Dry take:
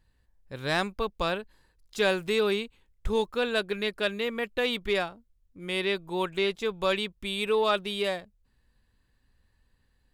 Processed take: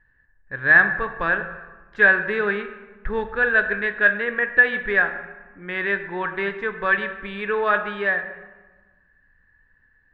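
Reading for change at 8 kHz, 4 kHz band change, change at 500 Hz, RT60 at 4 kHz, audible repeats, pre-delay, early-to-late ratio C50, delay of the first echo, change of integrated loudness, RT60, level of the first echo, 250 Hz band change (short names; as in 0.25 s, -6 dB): under -25 dB, -9.5 dB, +1.5 dB, 0.80 s, none, 3 ms, 10.0 dB, none, +8.5 dB, 1.4 s, none, +0.5 dB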